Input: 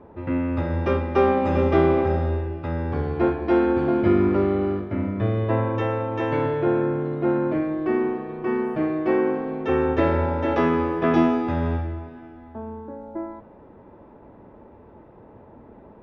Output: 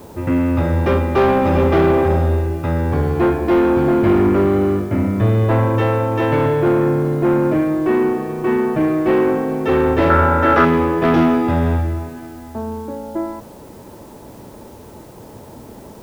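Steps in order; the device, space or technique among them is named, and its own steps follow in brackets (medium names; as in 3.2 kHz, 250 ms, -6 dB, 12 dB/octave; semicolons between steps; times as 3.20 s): open-reel tape (saturation -18 dBFS, distortion -13 dB; peaking EQ 130 Hz +3.5 dB 0.77 oct; white noise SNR 34 dB); 10.10–10.65 s: peaking EQ 1.4 kHz +14.5 dB 0.51 oct; trim +8.5 dB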